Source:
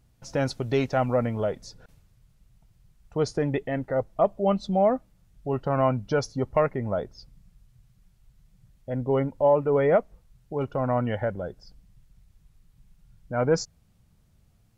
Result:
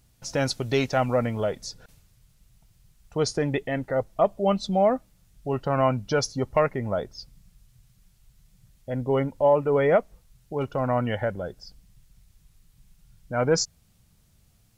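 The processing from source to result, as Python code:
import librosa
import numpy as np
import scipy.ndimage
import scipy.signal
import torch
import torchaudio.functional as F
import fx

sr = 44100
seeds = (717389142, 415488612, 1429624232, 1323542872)

y = fx.high_shelf(x, sr, hz=2400.0, db=9.5)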